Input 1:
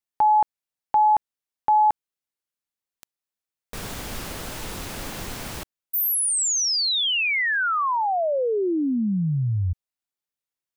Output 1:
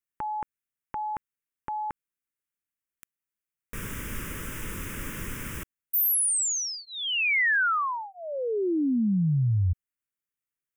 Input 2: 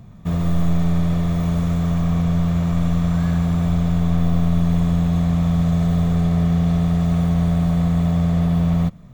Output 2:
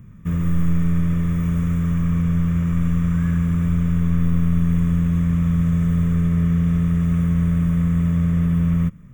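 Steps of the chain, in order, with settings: fixed phaser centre 1800 Hz, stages 4

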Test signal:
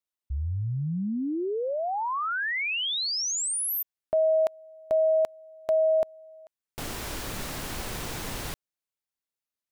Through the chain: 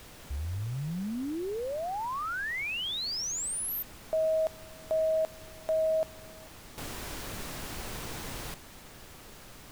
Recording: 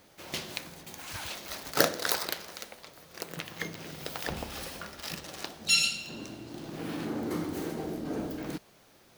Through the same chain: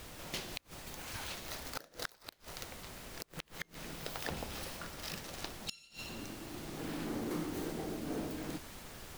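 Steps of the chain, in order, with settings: added noise pink -44 dBFS; flipped gate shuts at -17 dBFS, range -28 dB; gain -5 dB

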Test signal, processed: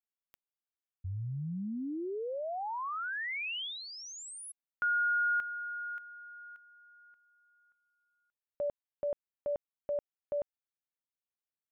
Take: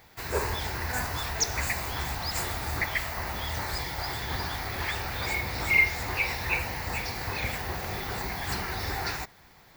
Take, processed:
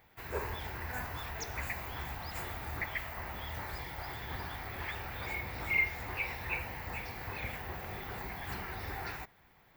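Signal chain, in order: band shelf 6600 Hz -9 dB; gain -8 dB

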